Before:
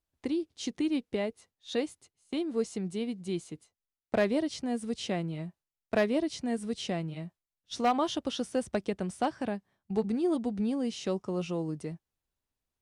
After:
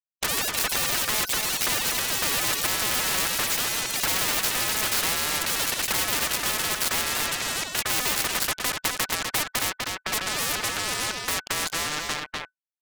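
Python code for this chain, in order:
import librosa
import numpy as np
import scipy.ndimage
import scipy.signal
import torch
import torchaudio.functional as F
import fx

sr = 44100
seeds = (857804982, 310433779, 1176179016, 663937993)

p1 = fx.doppler_pass(x, sr, speed_mps=16, closest_m=8.2, pass_at_s=3.1)
p2 = scipy.signal.sosfilt(scipy.signal.butter(2, 1900.0, 'lowpass', fs=sr, output='sos'), p1)
p3 = fx.low_shelf(p2, sr, hz=250.0, db=-3.5)
p4 = fx.rider(p3, sr, range_db=4, speed_s=0.5)
p5 = p3 + (p4 * librosa.db_to_amplitude(2.0))
p6 = fx.fuzz(p5, sr, gain_db=56.0, gate_db=-55.0)
p7 = p6 * np.sin(2.0 * np.pi * 1500.0 * np.arange(len(p6)) / sr)
p8 = p7 + 10.0 ** (-11.5 / 20.0) * np.pad(p7, (int(249 * sr / 1000.0), 0))[:len(p7)]
p9 = fx.echo_pitch(p8, sr, ms=219, semitones=7, count=3, db_per_echo=-6.0)
p10 = fx.spectral_comp(p9, sr, ratio=4.0)
y = p10 * librosa.db_to_amplitude(1.5)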